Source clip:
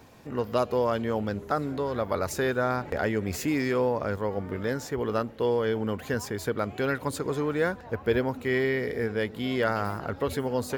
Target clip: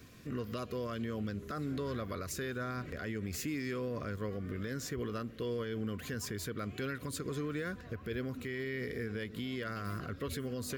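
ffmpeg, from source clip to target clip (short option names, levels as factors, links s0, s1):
-af "equalizer=f=700:t=o:w=1.3:g=-12,alimiter=level_in=1.78:limit=0.0631:level=0:latency=1:release=130,volume=0.562,asuperstop=centerf=870:order=20:qfactor=4.8"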